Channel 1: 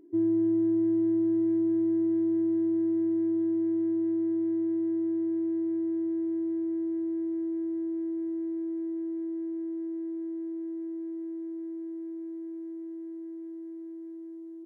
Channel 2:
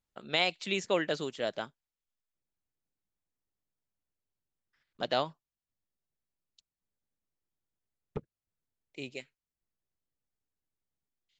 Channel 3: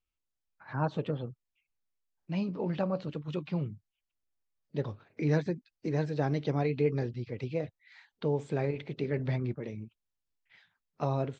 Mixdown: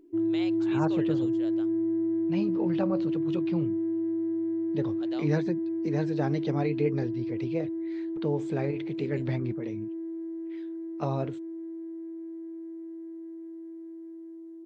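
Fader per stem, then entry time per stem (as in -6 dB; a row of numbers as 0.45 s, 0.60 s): -1.5 dB, -13.5 dB, +0.5 dB; 0.00 s, 0.00 s, 0.00 s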